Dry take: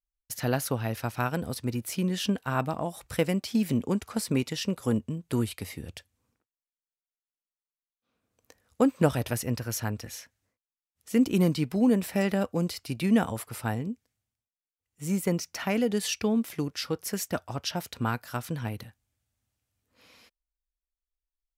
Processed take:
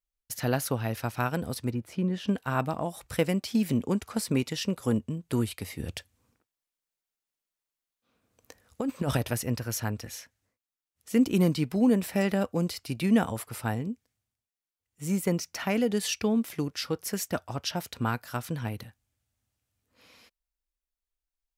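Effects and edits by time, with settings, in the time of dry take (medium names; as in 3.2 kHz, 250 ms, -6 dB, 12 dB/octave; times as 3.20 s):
1.71–2.28 s: low-pass 1.2 kHz 6 dB/octave
5.79–9.17 s: compressor with a negative ratio -27 dBFS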